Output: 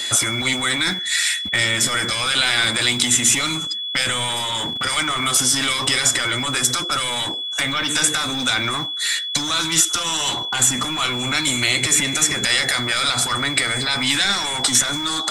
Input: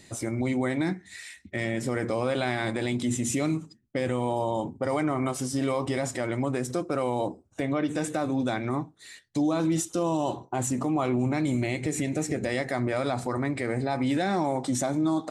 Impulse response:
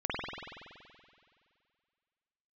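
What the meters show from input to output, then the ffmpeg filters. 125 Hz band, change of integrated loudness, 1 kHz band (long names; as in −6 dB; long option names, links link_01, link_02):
+0.5 dB, +10.5 dB, +6.0 dB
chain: -filter_complex "[0:a]equalizer=frequency=1400:width=3.8:gain=8,apsyclip=23dB,acrossover=split=1100|2900[link_01][link_02][link_03];[link_01]acompressor=threshold=-15dB:ratio=4[link_04];[link_02]acompressor=threshold=-26dB:ratio=4[link_05];[link_03]acompressor=threshold=-18dB:ratio=4[link_06];[link_04][link_05][link_06]amix=inputs=3:normalize=0,aeval=exprs='val(0)+0.0501*sin(2*PI*3400*n/s)':channel_layout=same,tiltshelf=frequency=820:gain=-7,acrossover=split=230|980[link_07][link_08][link_09];[link_07]acrusher=bits=5:mix=0:aa=0.000001[link_10];[link_08]aeval=exprs='0.0668*(abs(mod(val(0)/0.0668+3,4)-2)-1)':channel_layout=same[link_11];[link_10][link_11][link_09]amix=inputs=3:normalize=0,volume=-4.5dB"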